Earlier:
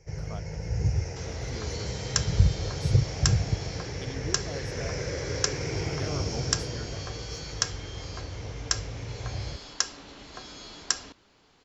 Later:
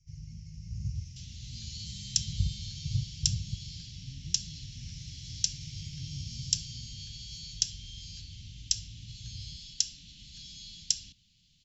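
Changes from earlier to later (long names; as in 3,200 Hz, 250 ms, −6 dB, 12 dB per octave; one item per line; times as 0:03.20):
speech: add moving average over 49 samples
first sound −8.5 dB
master: add elliptic band-stop filter 170–3,100 Hz, stop band 70 dB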